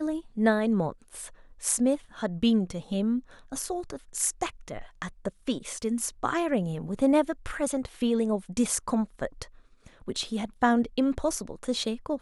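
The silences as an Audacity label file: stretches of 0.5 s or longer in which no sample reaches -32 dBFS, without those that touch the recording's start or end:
9.430000	10.080000	silence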